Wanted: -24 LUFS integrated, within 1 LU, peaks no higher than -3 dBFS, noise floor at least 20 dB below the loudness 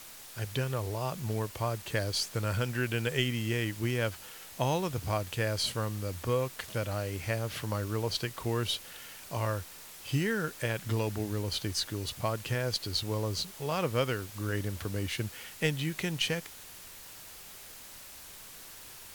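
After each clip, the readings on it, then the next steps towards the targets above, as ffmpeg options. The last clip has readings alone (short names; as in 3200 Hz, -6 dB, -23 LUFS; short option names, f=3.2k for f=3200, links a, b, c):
noise floor -49 dBFS; noise floor target -53 dBFS; loudness -32.5 LUFS; peak -13.5 dBFS; loudness target -24.0 LUFS
-> -af "afftdn=nr=6:nf=-49"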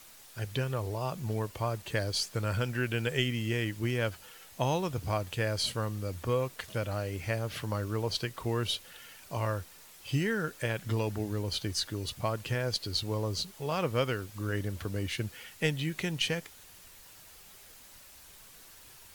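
noise floor -54 dBFS; loudness -33.0 LUFS; peak -13.5 dBFS; loudness target -24.0 LUFS
-> -af "volume=9dB"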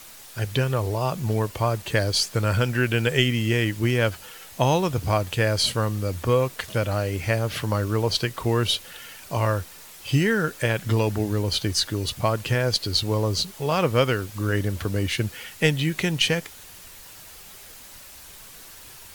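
loudness -24.0 LUFS; peak -4.5 dBFS; noise floor -45 dBFS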